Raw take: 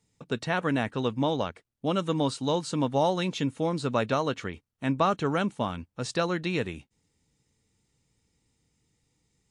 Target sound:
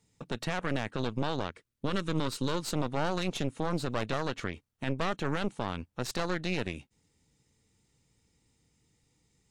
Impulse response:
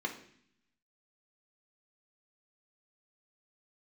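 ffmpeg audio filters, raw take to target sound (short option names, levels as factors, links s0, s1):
-filter_complex "[0:a]aeval=exprs='0.335*(cos(1*acos(clip(val(0)/0.335,-1,1)))-cos(1*PI/2))+0.106*(cos(6*acos(clip(val(0)/0.335,-1,1)))-cos(6*PI/2))':c=same,asettb=1/sr,asplit=3[s0][s1][s2];[s0]atrim=end=1.494[s3];[s1]atrim=start=1.49:end=2.62,asetpts=PTS-STARTPTS,afade=t=in:d=0.004:c=qsin,afade=t=out:st=1.126:d=0.004:c=qsin,equalizer=f=740:t=o:w=0.34:g=-12.5[s4];[s2]atrim=start=2.616[s5];[s3][s4]acrossfade=d=0.004:c1=hsin:c2=qsin[s6];[s6][s5]acrossfade=d=0.004:c1=qsin:c2=hsin,alimiter=limit=0.0944:level=0:latency=1:release=146,volume=1.19"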